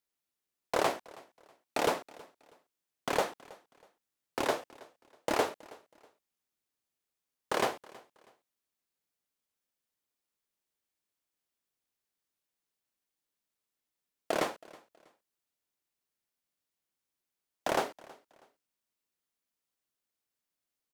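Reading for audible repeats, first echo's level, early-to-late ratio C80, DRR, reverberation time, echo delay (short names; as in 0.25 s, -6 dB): 2, -22.5 dB, none, none, none, 0.322 s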